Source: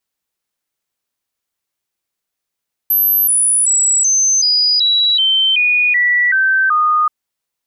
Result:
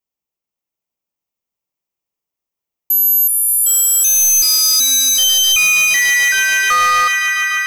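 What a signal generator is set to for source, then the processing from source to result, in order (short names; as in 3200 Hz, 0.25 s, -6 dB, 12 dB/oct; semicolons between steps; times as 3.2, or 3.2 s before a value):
stepped sine 12400 Hz down, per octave 3, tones 11, 0.38 s, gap 0.00 s -10 dBFS
fifteen-band EQ 1600 Hz -10 dB, 4000 Hz -9 dB, 10000 Hz -10 dB; swelling echo 0.145 s, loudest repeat 5, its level -10.5 dB; sample leveller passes 2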